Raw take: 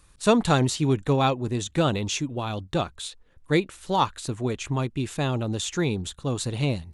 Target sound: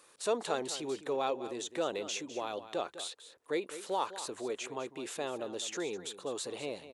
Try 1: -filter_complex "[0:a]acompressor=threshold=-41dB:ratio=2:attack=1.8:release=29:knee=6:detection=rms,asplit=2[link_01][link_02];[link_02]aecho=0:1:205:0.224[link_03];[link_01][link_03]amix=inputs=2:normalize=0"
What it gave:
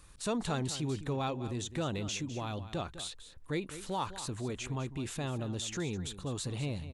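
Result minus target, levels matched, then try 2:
500 Hz band −4.5 dB
-filter_complex "[0:a]acompressor=threshold=-41dB:ratio=2:attack=1.8:release=29:knee=6:detection=rms,highpass=frequency=450:width_type=q:width=1.9,asplit=2[link_01][link_02];[link_02]aecho=0:1:205:0.224[link_03];[link_01][link_03]amix=inputs=2:normalize=0"

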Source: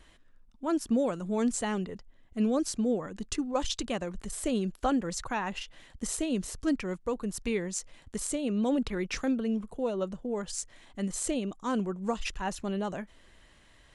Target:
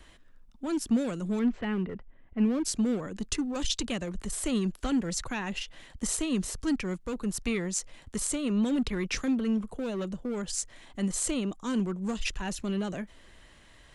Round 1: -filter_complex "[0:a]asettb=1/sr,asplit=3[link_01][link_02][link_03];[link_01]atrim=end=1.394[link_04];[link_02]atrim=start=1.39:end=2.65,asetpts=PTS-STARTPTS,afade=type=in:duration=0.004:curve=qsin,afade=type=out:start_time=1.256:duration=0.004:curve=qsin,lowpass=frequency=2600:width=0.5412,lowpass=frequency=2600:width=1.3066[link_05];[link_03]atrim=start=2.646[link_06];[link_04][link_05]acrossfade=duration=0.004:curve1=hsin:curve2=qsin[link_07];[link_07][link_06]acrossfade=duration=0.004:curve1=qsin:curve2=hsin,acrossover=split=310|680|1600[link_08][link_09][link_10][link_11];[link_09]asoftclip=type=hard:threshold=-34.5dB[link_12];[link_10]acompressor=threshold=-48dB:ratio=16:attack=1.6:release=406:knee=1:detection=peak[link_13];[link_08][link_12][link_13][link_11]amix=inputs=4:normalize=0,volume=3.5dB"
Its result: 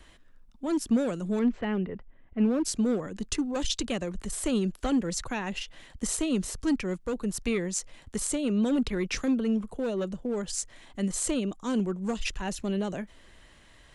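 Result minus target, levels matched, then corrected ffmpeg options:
hard clipping: distortion −6 dB
-filter_complex "[0:a]asettb=1/sr,asplit=3[link_01][link_02][link_03];[link_01]atrim=end=1.394[link_04];[link_02]atrim=start=1.39:end=2.65,asetpts=PTS-STARTPTS,afade=type=in:duration=0.004:curve=qsin,afade=type=out:start_time=1.256:duration=0.004:curve=qsin,lowpass=frequency=2600:width=0.5412,lowpass=frequency=2600:width=1.3066[link_05];[link_03]atrim=start=2.646[link_06];[link_04][link_05]acrossfade=duration=0.004:curve1=hsin:curve2=qsin[link_07];[link_07][link_06]acrossfade=duration=0.004:curve1=qsin:curve2=hsin,acrossover=split=310|680|1600[link_08][link_09][link_10][link_11];[link_09]asoftclip=type=hard:threshold=-43dB[link_12];[link_10]acompressor=threshold=-48dB:ratio=16:attack=1.6:release=406:knee=1:detection=peak[link_13];[link_08][link_12][link_13][link_11]amix=inputs=4:normalize=0,volume=3.5dB"

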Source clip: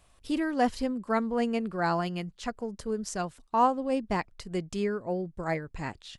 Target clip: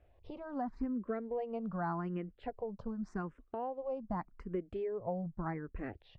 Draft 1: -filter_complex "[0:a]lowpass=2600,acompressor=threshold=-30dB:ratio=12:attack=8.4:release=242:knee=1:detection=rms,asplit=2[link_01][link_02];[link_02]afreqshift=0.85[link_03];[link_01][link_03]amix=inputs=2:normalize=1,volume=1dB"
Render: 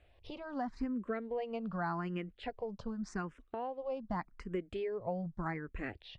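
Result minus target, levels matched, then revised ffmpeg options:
2,000 Hz band +5.5 dB
-filter_complex "[0:a]lowpass=1200,acompressor=threshold=-30dB:ratio=12:attack=8.4:release=242:knee=1:detection=rms,asplit=2[link_01][link_02];[link_02]afreqshift=0.85[link_03];[link_01][link_03]amix=inputs=2:normalize=1,volume=1dB"

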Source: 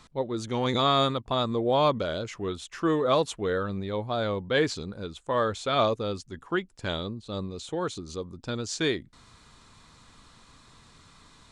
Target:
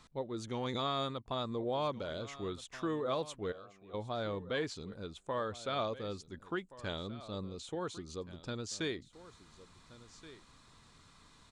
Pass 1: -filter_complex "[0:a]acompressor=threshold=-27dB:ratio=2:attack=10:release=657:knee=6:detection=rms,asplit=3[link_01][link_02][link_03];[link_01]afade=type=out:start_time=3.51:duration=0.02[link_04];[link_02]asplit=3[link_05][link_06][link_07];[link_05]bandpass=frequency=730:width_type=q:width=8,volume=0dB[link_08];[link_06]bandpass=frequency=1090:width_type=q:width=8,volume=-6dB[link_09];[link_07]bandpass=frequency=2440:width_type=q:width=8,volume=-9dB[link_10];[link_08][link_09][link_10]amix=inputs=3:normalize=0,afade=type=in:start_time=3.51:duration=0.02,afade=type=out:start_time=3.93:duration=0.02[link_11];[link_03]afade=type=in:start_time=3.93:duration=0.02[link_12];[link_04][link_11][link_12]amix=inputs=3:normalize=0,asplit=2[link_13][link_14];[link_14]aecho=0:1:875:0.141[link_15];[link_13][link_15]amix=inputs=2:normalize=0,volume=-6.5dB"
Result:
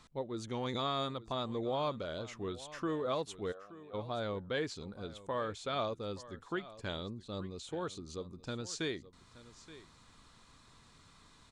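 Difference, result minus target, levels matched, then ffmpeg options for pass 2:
echo 550 ms early
-filter_complex "[0:a]acompressor=threshold=-27dB:ratio=2:attack=10:release=657:knee=6:detection=rms,asplit=3[link_01][link_02][link_03];[link_01]afade=type=out:start_time=3.51:duration=0.02[link_04];[link_02]asplit=3[link_05][link_06][link_07];[link_05]bandpass=frequency=730:width_type=q:width=8,volume=0dB[link_08];[link_06]bandpass=frequency=1090:width_type=q:width=8,volume=-6dB[link_09];[link_07]bandpass=frequency=2440:width_type=q:width=8,volume=-9dB[link_10];[link_08][link_09][link_10]amix=inputs=3:normalize=0,afade=type=in:start_time=3.51:duration=0.02,afade=type=out:start_time=3.93:duration=0.02[link_11];[link_03]afade=type=in:start_time=3.93:duration=0.02[link_12];[link_04][link_11][link_12]amix=inputs=3:normalize=0,asplit=2[link_13][link_14];[link_14]aecho=0:1:1425:0.141[link_15];[link_13][link_15]amix=inputs=2:normalize=0,volume=-6.5dB"

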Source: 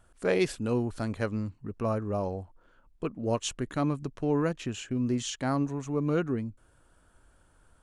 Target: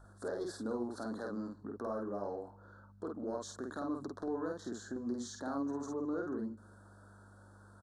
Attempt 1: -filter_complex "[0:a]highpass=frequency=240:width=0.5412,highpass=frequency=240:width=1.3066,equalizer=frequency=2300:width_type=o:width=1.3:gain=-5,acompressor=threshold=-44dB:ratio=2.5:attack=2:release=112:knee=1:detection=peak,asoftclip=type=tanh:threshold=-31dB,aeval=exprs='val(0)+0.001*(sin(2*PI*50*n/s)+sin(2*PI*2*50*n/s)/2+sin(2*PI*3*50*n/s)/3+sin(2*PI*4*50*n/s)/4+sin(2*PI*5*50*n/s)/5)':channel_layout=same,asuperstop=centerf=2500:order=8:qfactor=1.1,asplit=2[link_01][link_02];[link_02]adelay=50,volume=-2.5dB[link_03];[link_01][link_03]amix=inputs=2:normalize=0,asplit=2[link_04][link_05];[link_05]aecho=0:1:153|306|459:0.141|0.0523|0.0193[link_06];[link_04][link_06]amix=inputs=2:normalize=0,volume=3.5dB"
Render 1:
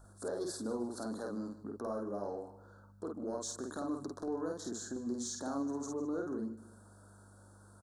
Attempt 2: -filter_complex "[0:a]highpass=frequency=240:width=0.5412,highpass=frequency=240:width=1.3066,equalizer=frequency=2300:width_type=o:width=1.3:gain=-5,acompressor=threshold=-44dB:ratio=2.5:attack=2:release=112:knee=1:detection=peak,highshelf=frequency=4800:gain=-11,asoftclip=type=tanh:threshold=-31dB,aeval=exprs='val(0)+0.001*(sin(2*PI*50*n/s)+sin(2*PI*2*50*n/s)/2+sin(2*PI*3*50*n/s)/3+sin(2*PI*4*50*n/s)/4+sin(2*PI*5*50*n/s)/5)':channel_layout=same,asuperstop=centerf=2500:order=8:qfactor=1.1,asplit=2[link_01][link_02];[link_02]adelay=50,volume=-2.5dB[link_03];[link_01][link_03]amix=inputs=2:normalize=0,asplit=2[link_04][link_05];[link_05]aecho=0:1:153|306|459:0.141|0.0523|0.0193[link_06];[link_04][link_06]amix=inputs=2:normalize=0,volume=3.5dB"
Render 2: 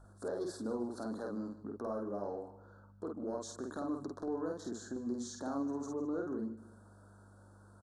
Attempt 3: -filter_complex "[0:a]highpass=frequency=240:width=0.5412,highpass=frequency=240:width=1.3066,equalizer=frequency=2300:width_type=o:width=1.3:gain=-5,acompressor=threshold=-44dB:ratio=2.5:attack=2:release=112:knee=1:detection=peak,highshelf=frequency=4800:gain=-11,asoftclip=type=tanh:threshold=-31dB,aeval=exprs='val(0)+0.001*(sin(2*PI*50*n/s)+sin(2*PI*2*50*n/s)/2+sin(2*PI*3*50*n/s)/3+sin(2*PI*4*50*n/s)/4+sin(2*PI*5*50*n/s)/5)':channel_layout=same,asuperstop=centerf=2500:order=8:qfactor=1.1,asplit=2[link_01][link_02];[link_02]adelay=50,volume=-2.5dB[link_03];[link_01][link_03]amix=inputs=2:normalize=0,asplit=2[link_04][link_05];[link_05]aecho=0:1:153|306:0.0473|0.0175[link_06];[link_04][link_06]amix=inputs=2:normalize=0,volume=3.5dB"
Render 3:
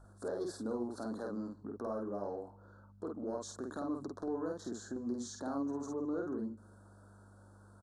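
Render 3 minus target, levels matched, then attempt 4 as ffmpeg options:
2,000 Hz band −4.0 dB
-filter_complex "[0:a]highpass=frequency=240:width=0.5412,highpass=frequency=240:width=1.3066,equalizer=frequency=2300:width_type=o:width=1.3:gain=4.5,acompressor=threshold=-44dB:ratio=2.5:attack=2:release=112:knee=1:detection=peak,highshelf=frequency=4800:gain=-11,asoftclip=type=tanh:threshold=-31dB,aeval=exprs='val(0)+0.001*(sin(2*PI*50*n/s)+sin(2*PI*2*50*n/s)/2+sin(2*PI*3*50*n/s)/3+sin(2*PI*4*50*n/s)/4+sin(2*PI*5*50*n/s)/5)':channel_layout=same,asuperstop=centerf=2500:order=8:qfactor=1.1,asplit=2[link_01][link_02];[link_02]adelay=50,volume=-2.5dB[link_03];[link_01][link_03]amix=inputs=2:normalize=0,asplit=2[link_04][link_05];[link_05]aecho=0:1:153|306:0.0473|0.0175[link_06];[link_04][link_06]amix=inputs=2:normalize=0,volume=3.5dB"

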